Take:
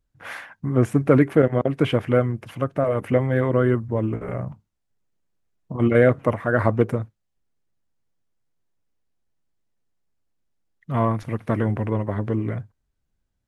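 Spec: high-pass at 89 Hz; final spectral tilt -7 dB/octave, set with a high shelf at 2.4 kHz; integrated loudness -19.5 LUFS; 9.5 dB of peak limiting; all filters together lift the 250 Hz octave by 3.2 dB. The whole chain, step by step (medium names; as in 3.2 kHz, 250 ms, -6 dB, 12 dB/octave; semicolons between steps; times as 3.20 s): high-pass 89 Hz; peaking EQ 250 Hz +4 dB; treble shelf 2.4 kHz -8 dB; trim +4 dB; peak limiter -6.5 dBFS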